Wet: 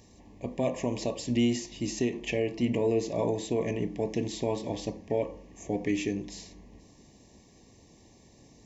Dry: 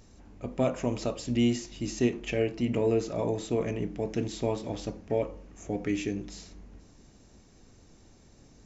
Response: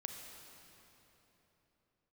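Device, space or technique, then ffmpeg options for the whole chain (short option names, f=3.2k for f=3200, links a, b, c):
PA system with an anti-feedback notch: -af "highpass=f=100:p=1,asuperstop=centerf=1400:order=20:qfactor=2.8,alimiter=limit=-19.5dB:level=0:latency=1:release=111,volume=2dB"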